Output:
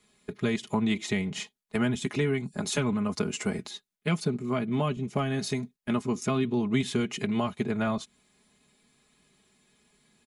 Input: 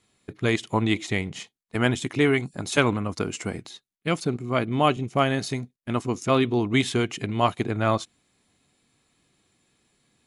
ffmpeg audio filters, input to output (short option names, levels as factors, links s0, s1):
-filter_complex "[0:a]aecho=1:1:4.8:0.71,acrossover=split=220[s0][s1];[s1]acompressor=threshold=0.0398:ratio=10[s2];[s0][s2]amix=inputs=2:normalize=0"